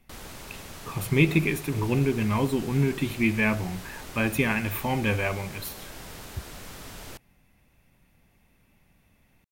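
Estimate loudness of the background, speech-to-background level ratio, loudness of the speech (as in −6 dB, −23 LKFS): −42.0 LKFS, 16.0 dB, −26.0 LKFS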